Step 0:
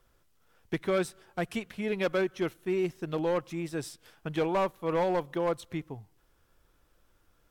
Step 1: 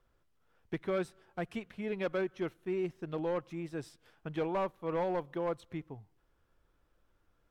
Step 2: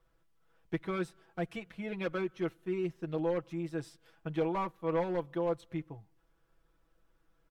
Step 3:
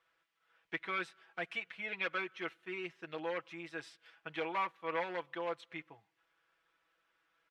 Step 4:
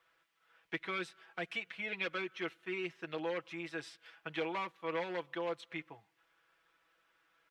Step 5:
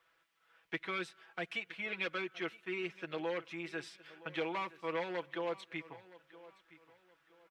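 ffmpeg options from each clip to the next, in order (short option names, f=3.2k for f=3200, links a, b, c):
-af "highshelf=f=4.5k:g=-11.5,volume=-5dB"
-af "aecho=1:1:6.1:0.74,volume=-1.5dB"
-af "bandpass=f=2.3k:t=q:w=1.2:csg=0,volume=7.5dB"
-filter_complex "[0:a]acrossover=split=490|3000[a][b][c];[b]acompressor=threshold=-47dB:ratio=2.5[d];[a][d][c]amix=inputs=3:normalize=0,volume=4dB"
-af "aecho=1:1:968|1936|2904:0.112|0.0337|0.0101"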